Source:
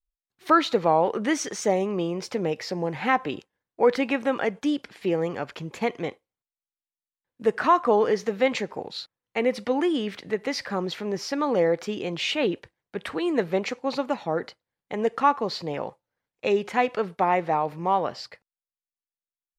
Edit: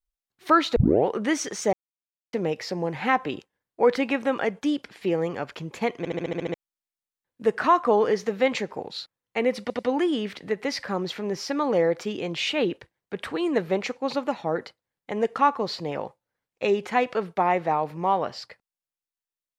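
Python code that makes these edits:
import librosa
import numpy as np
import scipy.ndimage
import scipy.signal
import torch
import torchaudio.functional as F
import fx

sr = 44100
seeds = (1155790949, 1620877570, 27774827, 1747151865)

y = fx.edit(x, sr, fx.tape_start(start_s=0.76, length_s=0.31),
    fx.silence(start_s=1.73, length_s=0.6),
    fx.stutter_over(start_s=5.98, slice_s=0.07, count=8),
    fx.stutter(start_s=9.61, slice_s=0.09, count=3), tone=tone)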